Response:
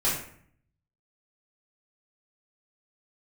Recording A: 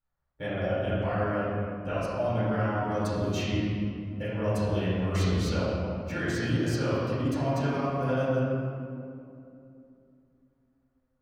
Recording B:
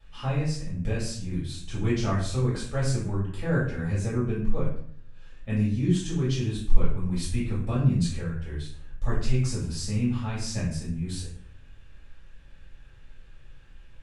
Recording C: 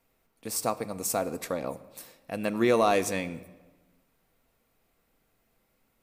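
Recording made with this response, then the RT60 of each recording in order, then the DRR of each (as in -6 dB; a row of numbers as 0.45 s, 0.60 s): B; 2.7 s, 0.60 s, 1.3 s; -12.0 dB, -9.5 dB, 10.5 dB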